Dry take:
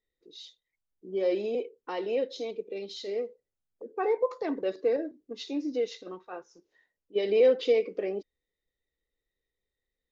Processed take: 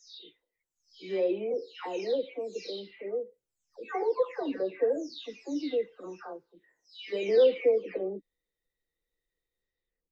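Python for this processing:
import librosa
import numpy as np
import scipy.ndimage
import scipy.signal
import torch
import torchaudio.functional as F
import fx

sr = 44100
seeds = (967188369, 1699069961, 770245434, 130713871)

y = fx.spec_delay(x, sr, highs='early', ms=492)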